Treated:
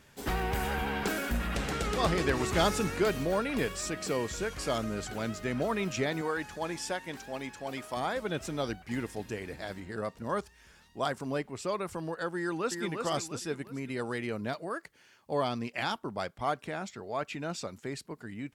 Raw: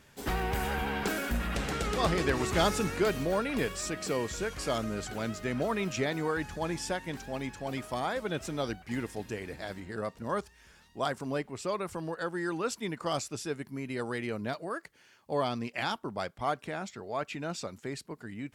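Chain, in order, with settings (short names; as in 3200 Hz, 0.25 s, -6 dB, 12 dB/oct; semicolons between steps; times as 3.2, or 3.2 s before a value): 6.21–7.97 low shelf 180 Hz -11.5 dB; 12.36–12.84 echo throw 0.35 s, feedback 40%, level -5 dB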